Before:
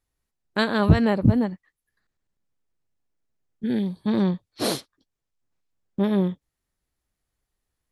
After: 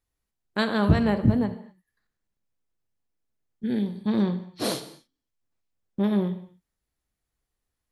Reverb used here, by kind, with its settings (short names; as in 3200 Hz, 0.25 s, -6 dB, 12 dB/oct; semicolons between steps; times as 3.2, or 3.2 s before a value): non-linear reverb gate 0.28 s falling, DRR 9 dB; gain -3 dB